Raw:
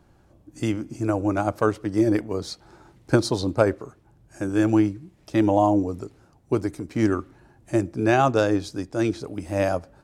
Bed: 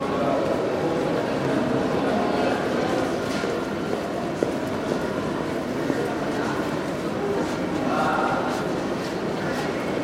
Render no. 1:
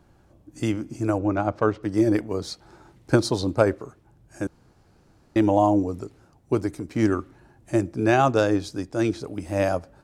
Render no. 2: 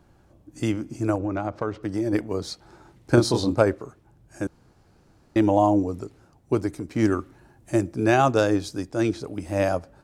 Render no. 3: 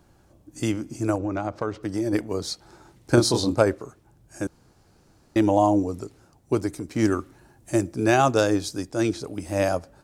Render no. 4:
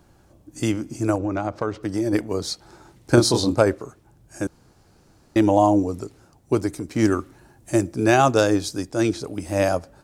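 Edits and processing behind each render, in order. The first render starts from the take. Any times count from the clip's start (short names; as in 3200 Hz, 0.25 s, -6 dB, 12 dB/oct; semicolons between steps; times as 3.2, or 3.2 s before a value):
1.18–1.83 air absorption 140 m; 4.47–5.36 room tone
1.15–2.13 compressor 4:1, threshold -22 dBFS; 3.15–3.6 doubler 25 ms -2.5 dB; 7.04–8.91 high shelf 7900 Hz +5.5 dB
tone controls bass -1 dB, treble +6 dB
gain +2.5 dB; limiter -3 dBFS, peak gain reduction 1 dB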